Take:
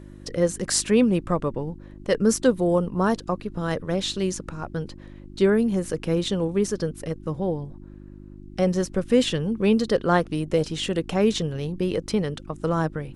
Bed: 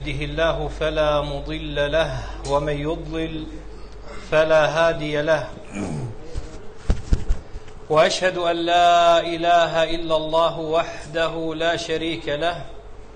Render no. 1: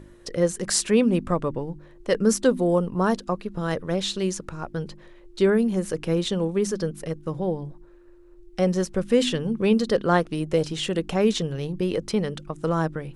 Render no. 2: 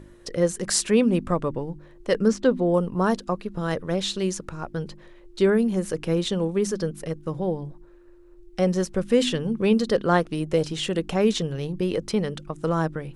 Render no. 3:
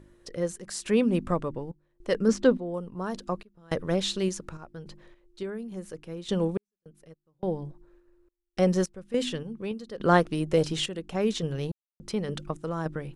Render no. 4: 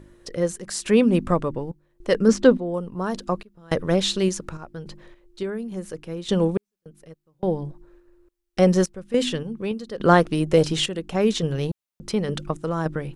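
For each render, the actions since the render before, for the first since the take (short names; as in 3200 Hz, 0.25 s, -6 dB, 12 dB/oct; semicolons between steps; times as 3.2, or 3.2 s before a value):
de-hum 50 Hz, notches 6
2.28–2.74 air absorption 130 m
random-step tremolo, depth 100%
gain +6 dB; limiter -3 dBFS, peak gain reduction 2.5 dB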